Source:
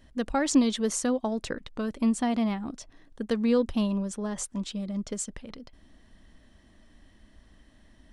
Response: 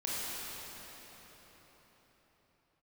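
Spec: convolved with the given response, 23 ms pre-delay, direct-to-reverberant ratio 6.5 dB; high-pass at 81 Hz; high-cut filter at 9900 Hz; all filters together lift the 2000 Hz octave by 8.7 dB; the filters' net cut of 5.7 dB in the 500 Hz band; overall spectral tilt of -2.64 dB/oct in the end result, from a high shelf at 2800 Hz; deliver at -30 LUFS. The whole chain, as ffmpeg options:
-filter_complex "[0:a]highpass=81,lowpass=9.9k,equalizer=f=500:t=o:g=-7,equalizer=f=2k:t=o:g=8,highshelf=f=2.8k:g=8,asplit=2[a][b];[1:a]atrim=start_sample=2205,adelay=23[c];[b][c]afir=irnorm=-1:irlink=0,volume=-12.5dB[d];[a][d]amix=inputs=2:normalize=0,volume=-2.5dB"

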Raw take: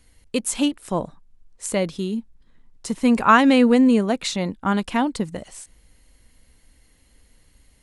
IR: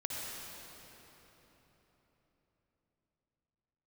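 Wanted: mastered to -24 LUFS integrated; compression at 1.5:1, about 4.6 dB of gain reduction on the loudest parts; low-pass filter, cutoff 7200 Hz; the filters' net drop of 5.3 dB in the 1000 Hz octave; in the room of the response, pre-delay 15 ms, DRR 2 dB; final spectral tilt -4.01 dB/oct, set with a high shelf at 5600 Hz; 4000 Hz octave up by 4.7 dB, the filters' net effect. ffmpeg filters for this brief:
-filter_complex "[0:a]lowpass=7.2k,equalizer=f=1k:t=o:g=-7.5,equalizer=f=4k:t=o:g=4,highshelf=f=5.6k:g=8,acompressor=threshold=-25dB:ratio=1.5,asplit=2[a][b];[1:a]atrim=start_sample=2205,adelay=15[c];[b][c]afir=irnorm=-1:irlink=0,volume=-5dB[d];[a][d]amix=inputs=2:normalize=0,volume=-0.5dB"

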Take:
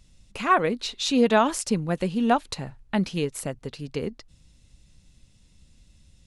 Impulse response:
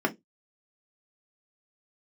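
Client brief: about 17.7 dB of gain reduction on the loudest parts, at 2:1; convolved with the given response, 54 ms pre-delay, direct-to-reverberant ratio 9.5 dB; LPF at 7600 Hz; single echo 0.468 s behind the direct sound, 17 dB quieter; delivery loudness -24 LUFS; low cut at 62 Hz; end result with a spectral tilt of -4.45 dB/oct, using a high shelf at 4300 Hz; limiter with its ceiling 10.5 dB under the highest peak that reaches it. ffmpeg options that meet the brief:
-filter_complex "[0:a]highpass=62,lowpass=7.6k,highshelf=f=4.3k:g=7,acompressor=threshold=-48dB:ratio=2,alimiter=level_in=10dB:limit=-24dB:level=0:latency=1,volume=-10dB,aecho=1:1:468:0.141,asplit=2[a][b];[1:a]atrim=start_sample=2205,adelay=54[c];[b][c]afir=irnorm=-1:irlink=0,volume=-20.5dB[d];[a][d]amix=inputs=2:normalize=0,volume=19.5dB"

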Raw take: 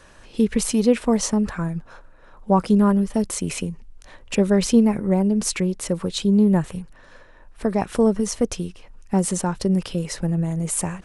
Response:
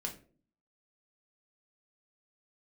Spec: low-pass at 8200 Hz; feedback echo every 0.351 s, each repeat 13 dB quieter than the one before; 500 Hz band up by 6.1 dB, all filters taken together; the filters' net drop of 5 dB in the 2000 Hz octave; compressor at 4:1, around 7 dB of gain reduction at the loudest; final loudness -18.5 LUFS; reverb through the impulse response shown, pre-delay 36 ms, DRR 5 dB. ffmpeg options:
-filter_complex "[0:a]lowpass=8.2k,equalizer=f=500:t=o:g=7.5,equalizer=f=2k:t=o:g=-7,acompressor=threshold=-15dB:ratio=4,aecho=1:1:351|702|1053:0.224|0.0493|0.0108,asplit=2[a][b];[1:a]atrim=start_sample=2205,adelay=36[c];[b][c]afir=irnorm=-1:irlink=0,volume=-5dB[d];[a][d]amix=inputs=2:normalize=0,volume=1.5dB"

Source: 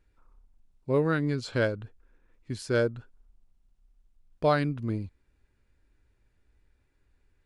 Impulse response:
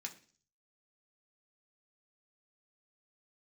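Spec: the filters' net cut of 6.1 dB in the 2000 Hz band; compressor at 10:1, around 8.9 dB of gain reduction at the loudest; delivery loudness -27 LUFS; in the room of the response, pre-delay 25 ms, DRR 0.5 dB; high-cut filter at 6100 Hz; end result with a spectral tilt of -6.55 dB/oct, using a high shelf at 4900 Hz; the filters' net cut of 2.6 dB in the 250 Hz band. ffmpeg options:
-filter_complex "[0:a]lowpass=6.1k,equalizer=f=250:t=o:g=-3.5,equalizer=f=2k:t=o:g=-8.5,highshelf=f=4.9k:g=-4.5,acompressor=threshold=-30dB:ratio=10,asplit=2[a][b];[1:a]atrim=start_sample=2205,adelay=25[c];[b][c]afir=irnorm=-1:irlink=0,volume=2dB[d];[a][d]amix=inputs=2:normalize=0,volume=8.5dB"

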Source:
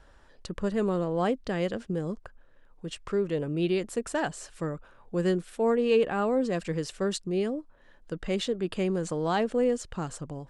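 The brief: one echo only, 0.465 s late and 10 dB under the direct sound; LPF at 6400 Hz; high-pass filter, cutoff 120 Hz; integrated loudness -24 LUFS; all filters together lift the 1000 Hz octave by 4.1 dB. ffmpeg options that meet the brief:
-af "highpass=120,lowpass=6.4k,equalizer=f=1k:t=o:g=5.5,aecho=1:1:465:0.316,volume=4dB"

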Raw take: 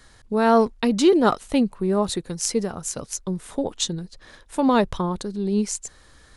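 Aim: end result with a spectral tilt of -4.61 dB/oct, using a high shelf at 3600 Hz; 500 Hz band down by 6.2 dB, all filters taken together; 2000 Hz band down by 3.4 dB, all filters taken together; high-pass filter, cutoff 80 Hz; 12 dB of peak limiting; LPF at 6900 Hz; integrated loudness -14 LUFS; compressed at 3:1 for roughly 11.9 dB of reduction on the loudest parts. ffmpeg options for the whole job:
-af "highpass=80,lowpass=6.9k,equalizer=f=500:t=o:g=-8.5,equalizer=f=2k:t=o:g=-5,highshelf=f=3.6k:g=3.5,acompressor=threshold=-33dB:ratio=3,volume=22.5dB,alimiter=limit=-4dB:level=0:latency=1"

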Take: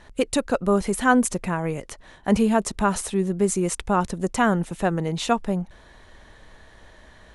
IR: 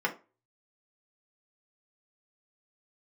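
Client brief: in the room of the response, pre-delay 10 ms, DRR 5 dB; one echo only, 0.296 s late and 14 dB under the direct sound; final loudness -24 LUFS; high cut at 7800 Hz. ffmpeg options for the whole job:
-filter_complex "[0:a]lowpass=7.8k,aecho=1:1:296:0.2,asplit=2[a][b];[1:a]atrim=start_sample=2205,adelay=10[c];[b][c]afir=irnorm=-1:irlink=0,volume=-14.5dB[d];[a][d]amix=inputs=2:normalize=0,volume=-2dB"

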